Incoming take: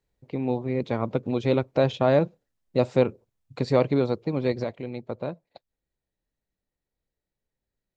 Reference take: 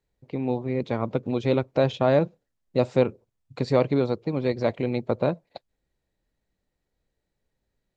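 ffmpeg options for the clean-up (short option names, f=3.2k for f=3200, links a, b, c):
-af "asetnsamples=n=441:p=0,asendcmd='4.64 volume volume 8dB',volume=0dB"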